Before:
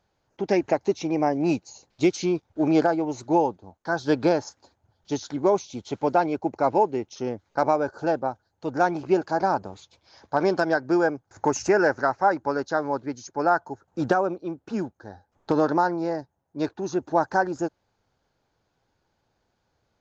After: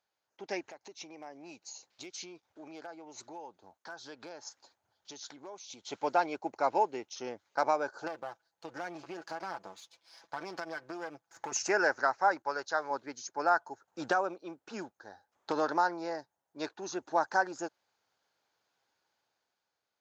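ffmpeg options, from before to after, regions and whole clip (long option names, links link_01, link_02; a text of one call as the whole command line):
ffmpeg -i in.wav -filter_complex "[0:a]asettb=1/sr,asplit=3[link_01][link_02][link_03];[link_01]atrim=end=0.614[link_04];[link_02]atrim=start=0.61:end=5.88,asetpts=PTS-STARTPTS,afade=type=in:duration=0.004:curve=qsin,afade=type=out:start_time=5.266:duration=0.004:curve=qsin,acompressor=threshold=-39dB:ratio=3:attack=3.2:release=140:knee=1:detection=peak,asoftclip=type=hard:threshold=-27.5dB[link_05];[link_03]atrim=start=5.876[link_06];[link_04][link_05]acrossfade=duration=0.004:curve1=hsin:curve2=qsin[link_07];[link_07][link_06]acrossfade=duration=0.004:curve1=qsin:curve2=hsin,asettb=1/sr,asplit=3[link_08][link_09][link_10];[link_08]atrim=end=8.074[link_11];[link_09]atrim=start=8.07:end=11.52,asetpts=PTS-STARTPTS,afade=type=in:duration=0.004:curve=qsin,afade=type=out:start_time=3.446:duration=0.004:curve=qsin,aeval=exprs='if(lt(val(0),0),0.447*val(0),val(0))':channel_layout=same,aecho=1:1:6:0.54,atrim=end_sample=152145,acompressor=threshold=-26dB:ratio=6:attack=3.2:release=140:knee=1:detection=peak[link_12];[link_10]atrim=start=11.516[link_13];[link_11][link_12]acrossfade=duration=0.004:curve1=hsin:curve2=qsin[link_14];[link_14][link_13]acrossfade=duration=0.004:curve1=qsin:curve2=hsin,asettb=1/sr,asplit=3[link_15][link_16][link_17];[link_15]atrim=end=12.424[link_18];[link_16]atrim=start=12.42:end=12.91,asetpts=PTS-STARTPTS,afade=type=in:duration=0.004:curve=qsin,afade=type=out:start_time=0.486:duration=0.004:curve=qsin,agate=range=-8dB:threshold=-49dB:ratio=16:release=100:detection=peak,equalizer=frequency=240:width=1.4:gain=-8.5[link_19];[link_17]atrim=start=12.906[link_20];[link_18][link_19]acrossfade=duration=0.004:curve1=hsin:curve2=qsin[link_21];[link_21][link_20]acrossfade=duration=0.004:curve1=qsin:curve2=hsin,highpass=frequency=1300:poles=1,dynaudnorm=framelen=120:gausssize=13:maxgain=7dB,volume=-7.5dB" out.wav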